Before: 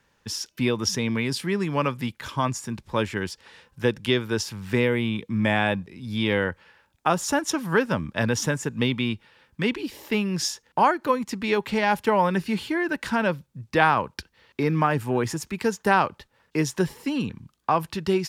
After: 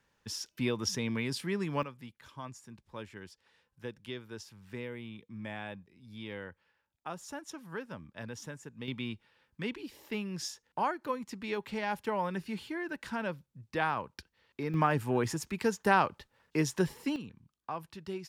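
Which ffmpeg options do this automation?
-af "asetnsamples=n=441:p=0,asendcmd='1.83 volume volume -19dB;8.88 volume volume -12dB;14.74 volume volume -5.5dB;17.16 volume volume -16.5dB',volume=0.398"

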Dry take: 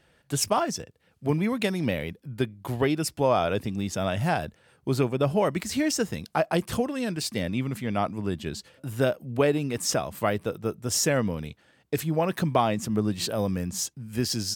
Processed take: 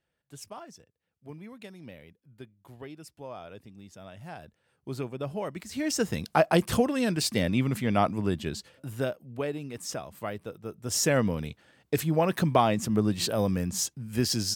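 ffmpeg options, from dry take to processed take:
-af "volume=4.22,afade=t=in:st=4.21:d=0.73:silence=0.354813,afade=t=in:st=5.71:d=0.5:silence=0.237137,afade=t=out:st=8.1:d=1.13:silence=0.251189,afade=t=in:st=10.68:d=0.49:silence=0.316228"

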